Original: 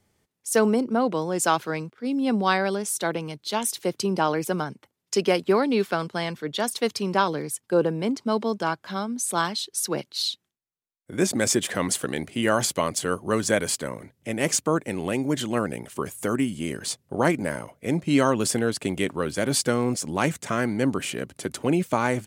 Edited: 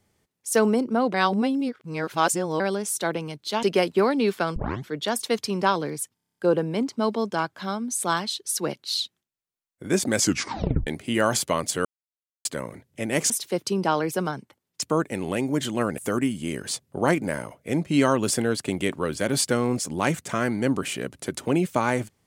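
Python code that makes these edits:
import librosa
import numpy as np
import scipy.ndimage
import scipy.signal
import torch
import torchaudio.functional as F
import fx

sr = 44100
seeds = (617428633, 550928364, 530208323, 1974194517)

y = fx.edit(x, sr, fx.reverse_span(start_s=1.14, length_s=1.46),
    fx.move(start_s=3.63, length_s=1.52, to_s=14.58),
    fx.tape_start(start_s=6.08, length_s=0.31),
    fx.stutter(start_s=7.66, slice_s=0.03, count=9),
    fx.tape_stop(start_s=11.47, length_s=0.68),
    fx.silence(start_s=13.13, length_s=0.6),
    fx.cut(start_s=15.74, length_s=0.41), tone=tone)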